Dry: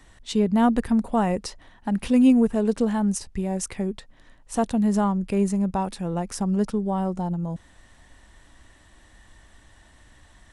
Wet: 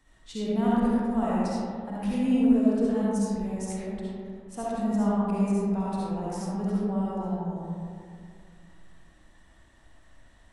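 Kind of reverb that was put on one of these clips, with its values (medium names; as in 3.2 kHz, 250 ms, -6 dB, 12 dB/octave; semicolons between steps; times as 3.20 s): algorithmic reverb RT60 2.3 s, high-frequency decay 0.35×, pre-delay 25 ms, DRR -8 dB; trim -13.5 dB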